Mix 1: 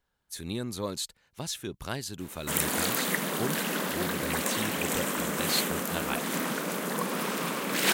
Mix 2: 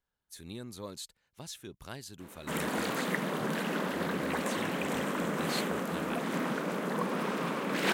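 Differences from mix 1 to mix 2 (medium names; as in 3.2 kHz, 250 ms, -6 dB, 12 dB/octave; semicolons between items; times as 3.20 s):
speech -9.0 dB; background: add low-pass 1.7 kHz 6 dB/octave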